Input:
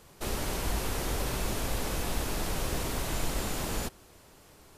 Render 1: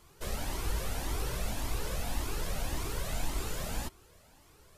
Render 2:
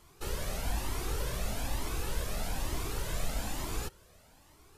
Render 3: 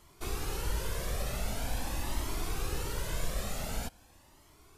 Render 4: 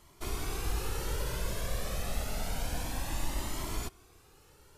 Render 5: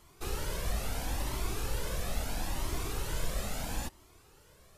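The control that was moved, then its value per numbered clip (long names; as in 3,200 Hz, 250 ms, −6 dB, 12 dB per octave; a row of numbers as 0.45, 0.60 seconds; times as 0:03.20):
flanger whose copies keep moving one way, speed: 1.8, 1.1, 0.45, 0.28, 0.75 Hertz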